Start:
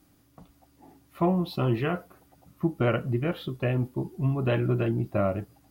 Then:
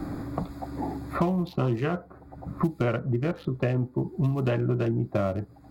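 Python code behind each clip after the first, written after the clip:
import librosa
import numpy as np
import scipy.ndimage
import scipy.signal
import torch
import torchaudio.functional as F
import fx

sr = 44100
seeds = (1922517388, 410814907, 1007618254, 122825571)

y = fx.wiener(x, sr, points=15)
y = fx.band_squash(y, sr, depth_pct=100)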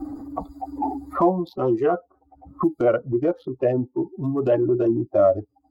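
y = fx.bin_expand(x, sr, power=2.0)
y = fx.band_shelf(y, sr, hz=590.0, db=16.0, octaves=2.5)
y = fx.transient(y, sr, attack_db=-6, sustain_db=2)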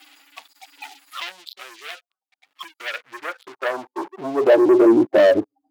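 y = fx.leveller(x, sr, passes=3)
y = fx.filter_sweep_highpass(y, sr, from_hz=3000.0, to_hz=250.0, start_s=2.61, end_s=5.14, q=1.4)
y = y * 10.0 ** (-2.5 / 20.0)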